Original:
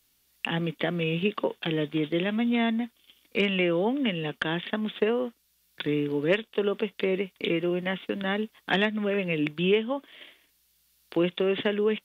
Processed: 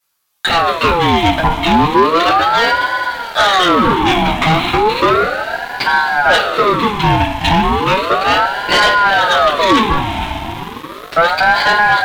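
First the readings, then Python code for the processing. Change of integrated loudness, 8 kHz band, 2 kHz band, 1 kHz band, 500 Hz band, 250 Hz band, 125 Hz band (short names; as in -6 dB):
+15.0 dB, n/a, +18.5 dB, +27.0 dB, +10.5 dB, +8.5 dB, +12.5 dB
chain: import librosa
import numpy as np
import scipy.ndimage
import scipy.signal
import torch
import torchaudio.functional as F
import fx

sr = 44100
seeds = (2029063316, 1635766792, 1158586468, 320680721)

y = fx.rev_double_slope(x, sr, seeds[0], early_s=0.24, late_s=4.9, knee_db=-22, drr_db=-9.0)
y = fx.leveller(y, sr, passes=3)
y = fx.ring_lfo(y, sr, carrier_hz=860.0, swing_pct=45, hz=0.34)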